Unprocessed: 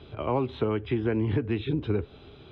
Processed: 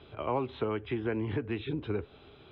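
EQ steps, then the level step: air absorption 160 m; low shelf 420 Hz -8.5 dB; 0.0 dB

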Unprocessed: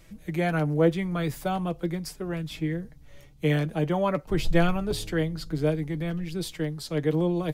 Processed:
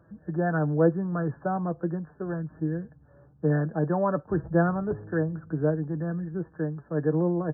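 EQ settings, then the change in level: HPF 73 Hz 24 dB/oct; brick-wall FIR low-pass 1800 Hz; 0.0 dB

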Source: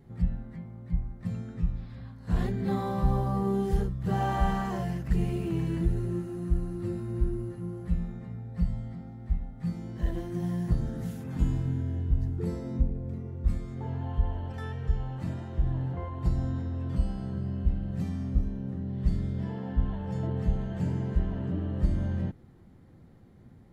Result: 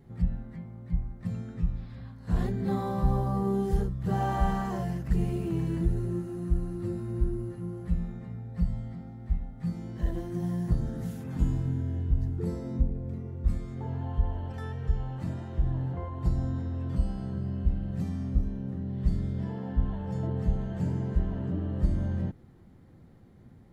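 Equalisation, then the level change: dynamic EQ 2600 Hz, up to -4 dB, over -53 dBFS, Q 1; 0.0 dB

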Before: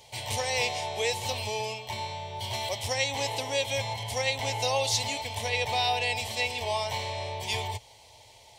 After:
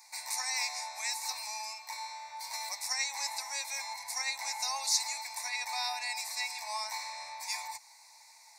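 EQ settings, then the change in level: inverse Chebyshev high-pass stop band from 480 Hz, stop band 40 dB; dynamic EQ 1600 Hz, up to -4 dB, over -44 dBFS, Q 0.73; Butterworth band-stop 3100 Hz, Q 1.6; +1.5 dB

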